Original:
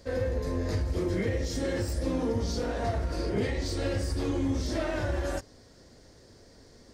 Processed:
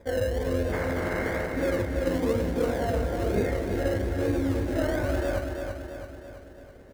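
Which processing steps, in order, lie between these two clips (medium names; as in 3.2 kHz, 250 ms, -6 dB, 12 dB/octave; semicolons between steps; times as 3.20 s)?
0.71–1.50 s: spectral contrast reduction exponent 0.28; rippled Chebyshev low-pass 2.2 kHz, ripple 6 dB; in parallel at -7.5 dB: decimation with a swept rate 30×, swing 60% 1.1 Hz; on the sum: feedback delay 332 ms, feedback 54%, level -5.5 dB; trim +3 dB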